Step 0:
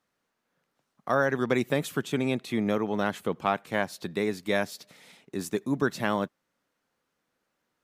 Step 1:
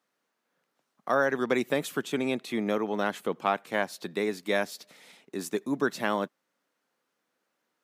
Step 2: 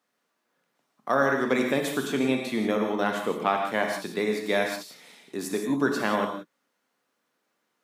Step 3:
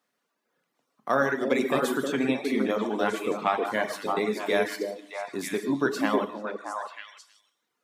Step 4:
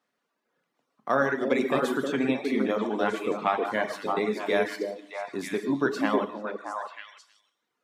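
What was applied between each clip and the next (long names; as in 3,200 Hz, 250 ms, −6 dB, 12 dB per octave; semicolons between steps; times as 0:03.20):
high-pass filter 220 Hz 12 dB per octave
reverb whose tail is shaped and stops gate 200 ms flat, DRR 2 dB; level +1 dB
reverb reduction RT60 1.4 s; echo through a band-pass that steps 313 ms, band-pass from 360 Hz, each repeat 1.4 octaves, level 0 dB
high-shelf EQ 6,900 Hz −10 dB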